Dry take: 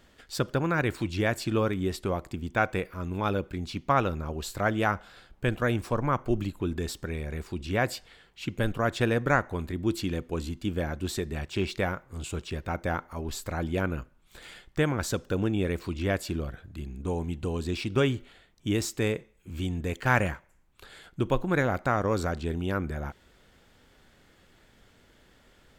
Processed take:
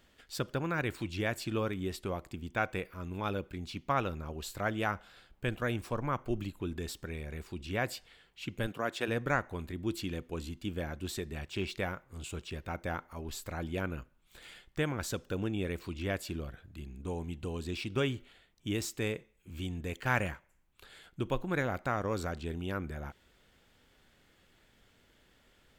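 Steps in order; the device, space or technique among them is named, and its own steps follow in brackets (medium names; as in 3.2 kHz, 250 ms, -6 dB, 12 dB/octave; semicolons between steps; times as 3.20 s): presence and air boost (peaking EQ 2.8 kHz +3.5 dB 1 oct; treble shelf 11 kHz +6 dB); 8.66–9.07 s: high-pass 140 Hz -> 320 Hz 12 dB/octave; trim -7 dB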